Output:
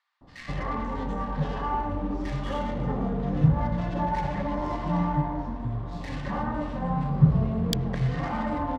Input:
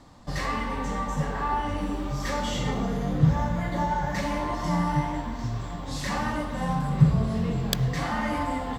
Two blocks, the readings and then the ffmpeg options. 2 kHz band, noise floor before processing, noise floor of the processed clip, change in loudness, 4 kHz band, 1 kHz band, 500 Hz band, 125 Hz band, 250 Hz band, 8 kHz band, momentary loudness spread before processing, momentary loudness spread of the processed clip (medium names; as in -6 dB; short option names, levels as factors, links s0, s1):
-5.5 dB, -35 dBFS, -42 dBFS, -0.5 dB, -5.5 dB, -1.5 dB, -0.5 dB, 0.0 dB, 0.0 dB, no reading, 9 LU, 9 LU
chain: -filter_complex "[0:a]adynamicsmooth=sensitivity=2:basefreq=1300,acrossover=split=1800[s0][s1];[s0]adelay=210[s2];[s2][s1]amix=inputs=2:normalize=0"